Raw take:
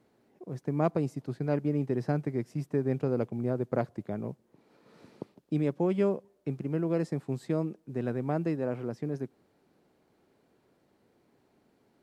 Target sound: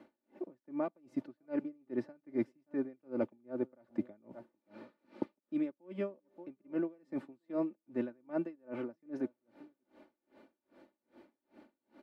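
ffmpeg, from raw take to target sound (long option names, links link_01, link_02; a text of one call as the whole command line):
ffmpeg -i in.wav -filter_complex "[0:a]areverse,acompressor=threshold=-38dB:ratio=6,areverse,acrossover=split=170 3600:gain=0.2 1 0.178[link_01][link_02][link_03];[link_01][link_02][link_03]amix=inputs=3:normalize=0,aecho=1:1:3.4:0.78,asplit=2[link_04][link_05];[link_05]adelay=577.3,volume=-19dB,highshelf=frequency=4000:gain=-13[link_06];[link_04][link_06]amix=inputs=2:normalize=0,aeval=exprs='val(0)*pow(10,-35*(0.5-0.5*cos(2*PI*2.5*n/s))/20)':channel_layout=same,volume=9dB" out.wav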